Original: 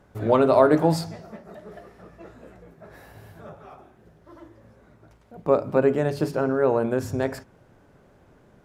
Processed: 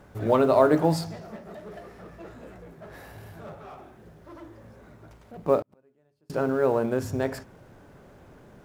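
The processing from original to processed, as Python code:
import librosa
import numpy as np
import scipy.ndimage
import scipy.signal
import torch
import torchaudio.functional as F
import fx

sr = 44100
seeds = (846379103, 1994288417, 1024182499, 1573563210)

y = fx.law_mismatch(x, sr, coded='mu')
y = fx.gate_flip(y, sr, shuts_db=-24.0, range_db=-41, at=(5.61, 6.3))
y = y * librosa.db_to_amplitude(-2.5)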